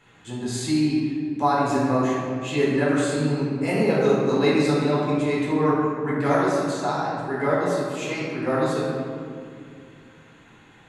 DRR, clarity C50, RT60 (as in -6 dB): -7.5 dB, -1.5 dB, 2.3 s